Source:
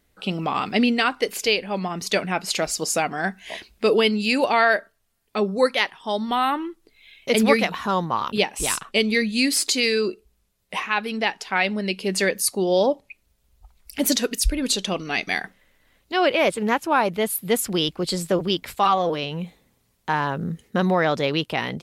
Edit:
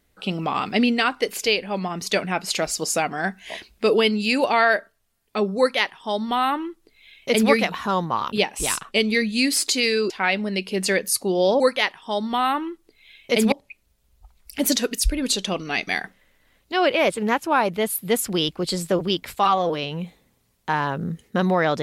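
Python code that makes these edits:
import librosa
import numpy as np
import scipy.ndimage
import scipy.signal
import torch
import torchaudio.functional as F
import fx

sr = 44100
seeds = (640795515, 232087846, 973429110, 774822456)

y = fx.edit(x, sr, fx.duplicate(start_s=5.58, length_s=1.92, to_s=12.92),
    fx.cut(start_s=10.1, length_s=1.32), tone=tone)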